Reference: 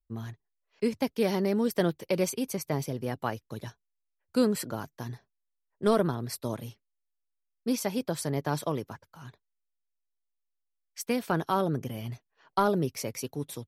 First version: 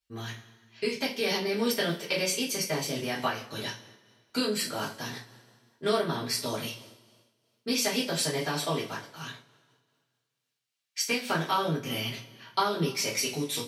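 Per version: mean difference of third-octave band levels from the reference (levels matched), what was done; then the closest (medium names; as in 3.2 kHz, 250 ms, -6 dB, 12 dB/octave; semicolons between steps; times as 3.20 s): 9.0 dB: frequency weighting D; compression 3:1, threshold -31 dBFS, peak gain reduction 10 dB; two-slope reverb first 0.29 s, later 1.8 s, from -21 dB, DRR -8 dB; random flutter of the level, depth 60%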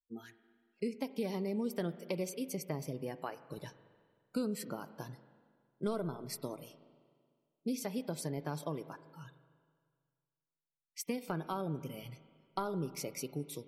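4.5 dB: compression 3:1, threshold -34 dBFS, peak gain reduction 11.5 dB; bass shelf 200 Hz +7 dB; spectral noise reduction 26 dB; spring tank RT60 1.9 s, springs 38/46 ms, chirp 60 ms, DRR 13.5 dB; trim -3 dB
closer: second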